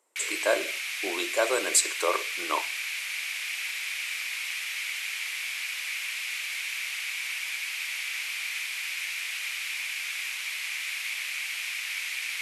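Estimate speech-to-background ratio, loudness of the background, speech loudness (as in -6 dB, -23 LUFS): 2.5 dB, -30.5 LUFS, -28.0 LUFS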